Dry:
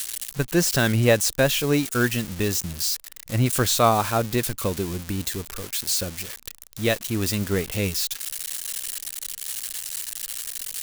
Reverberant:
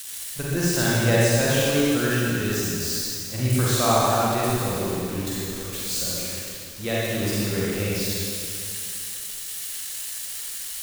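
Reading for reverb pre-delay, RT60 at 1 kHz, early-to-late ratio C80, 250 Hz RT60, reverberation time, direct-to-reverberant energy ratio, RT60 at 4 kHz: 32 ms, 2.5 s, -2.5 dB, 2.5 s, 2.5 s, -7.5 dB, 2.3 s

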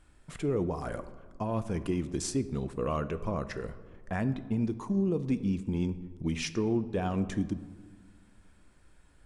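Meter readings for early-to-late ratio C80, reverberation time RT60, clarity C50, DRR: 15.5 dB, 1.5 s, 14.5 dB, 12.0 dB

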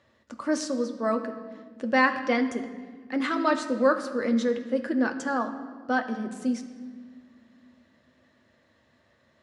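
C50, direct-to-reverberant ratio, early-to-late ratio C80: 10.5 dB, 5.0 dB, 11.5 dB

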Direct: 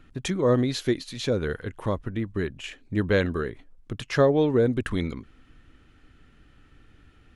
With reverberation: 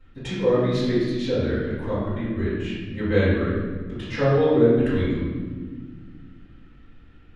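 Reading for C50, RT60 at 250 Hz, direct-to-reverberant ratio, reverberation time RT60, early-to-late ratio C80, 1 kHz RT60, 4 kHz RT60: -1.5 dB, 2.9 s, -16.0 dB, 1.6 s, 1.5 dB, 1.3 s, 1.0 s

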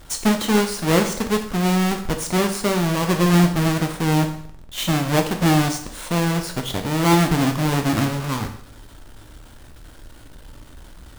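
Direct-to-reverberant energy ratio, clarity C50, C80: 4.5 dB, 9.5 dB, 12.5 dB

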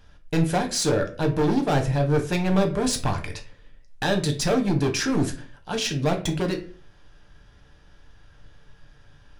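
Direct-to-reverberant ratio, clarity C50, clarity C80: 3.5 dB, 12.0 dB, 17.0 dB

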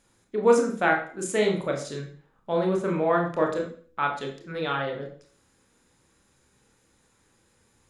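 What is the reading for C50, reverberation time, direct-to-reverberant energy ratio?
7.5 dB, 0.50 s, 1.5 dB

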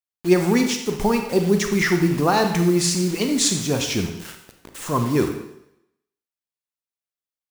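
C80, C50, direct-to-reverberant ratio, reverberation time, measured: 9.0 dB, 6.5 dB, 5.0 dB, 0.80 s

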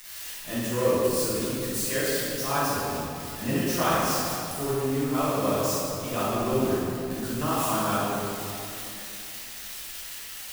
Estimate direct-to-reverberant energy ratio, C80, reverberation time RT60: -12.0 dB, -2.0 dB, 2.7 s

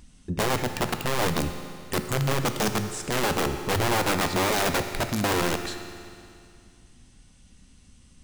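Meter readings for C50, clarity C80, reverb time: 8.0 dB, 9.0 dB, 2.4 s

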